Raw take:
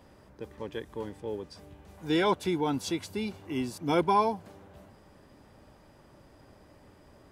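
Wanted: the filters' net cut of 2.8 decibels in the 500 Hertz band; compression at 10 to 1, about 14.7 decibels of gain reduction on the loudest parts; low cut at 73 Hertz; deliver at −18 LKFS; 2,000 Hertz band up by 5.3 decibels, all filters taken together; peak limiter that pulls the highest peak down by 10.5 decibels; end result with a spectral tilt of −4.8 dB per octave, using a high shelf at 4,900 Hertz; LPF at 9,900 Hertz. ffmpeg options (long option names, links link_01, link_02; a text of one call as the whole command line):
ffmpeg -i in.wav -af "highpass=73,lowpass=9900,equalizer=frequency=500:width_type=o:gain=-4,equalizer=frequency=2000:width_type=o:gain=7.5,highshelf=frequency=4900:gain=-4,acompressor=threshold=-35dB:ratio=10,volume=29dB,alimiter=limit=-6dB:level=0:latency=1" out.wav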